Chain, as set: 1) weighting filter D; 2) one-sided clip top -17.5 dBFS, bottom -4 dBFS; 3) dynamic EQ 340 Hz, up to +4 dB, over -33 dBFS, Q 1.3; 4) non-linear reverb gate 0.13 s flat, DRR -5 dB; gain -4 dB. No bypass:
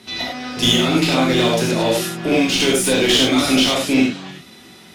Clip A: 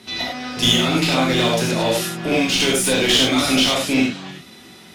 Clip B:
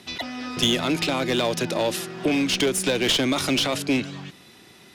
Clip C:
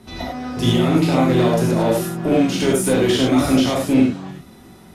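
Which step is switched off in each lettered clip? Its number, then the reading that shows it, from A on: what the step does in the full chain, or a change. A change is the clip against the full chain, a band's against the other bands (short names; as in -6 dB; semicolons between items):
3, 250 Hz band -2.5 dB; 4, loudness change -6.5 LU; 1, 4 kHz band -10.0 dB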